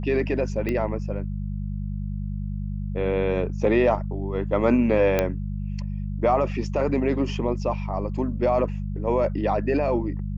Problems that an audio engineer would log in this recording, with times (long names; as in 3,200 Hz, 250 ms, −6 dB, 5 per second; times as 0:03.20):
mains hum 50 Hz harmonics 4 −29 dBFS
0:00.69: click −15 dBFS
0:05.19: click −8 dBFS